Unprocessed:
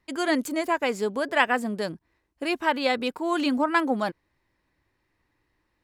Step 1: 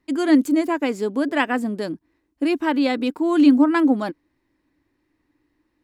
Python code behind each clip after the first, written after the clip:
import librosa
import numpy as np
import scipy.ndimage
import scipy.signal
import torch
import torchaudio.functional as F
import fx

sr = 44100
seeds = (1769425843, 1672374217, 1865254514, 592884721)

y = fx.peak_eq(x, sr, hz=290.0, db=15.0, octaves=0.58)
y = F.gain(torch.from_numpy(y), -1.0).numpy()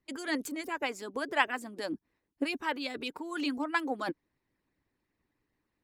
y = fx.hpss(x, sr, part='harmonic', gain_db=-17)
y = F.gain(torch.from_numpy(y), -3.5).numpy()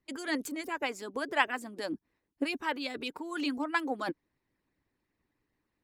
y = x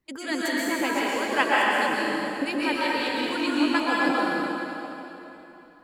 y = fx.rev_plate(x, sr, seeds[0], rt60_s=3.3, hf_ratio=0.85, predelay_ms=110, drr_db=-6.5)
y = F.gain(torch.from_numpy(y), 2.5).numpy()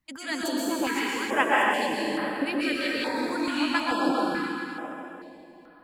y = fx.filter_held_notch(x, sr, hz=2.3, low_hz=420.0, high_hz=6500.0)